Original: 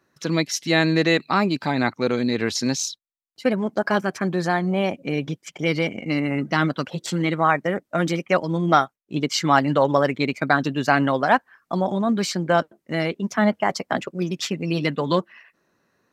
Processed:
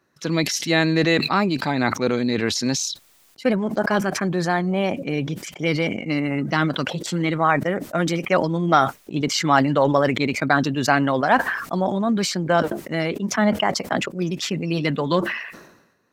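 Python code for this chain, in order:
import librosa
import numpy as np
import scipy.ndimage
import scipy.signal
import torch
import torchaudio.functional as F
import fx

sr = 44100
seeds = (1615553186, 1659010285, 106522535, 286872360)

y = fx.sustainer(x, sr, db_per_s=62.0)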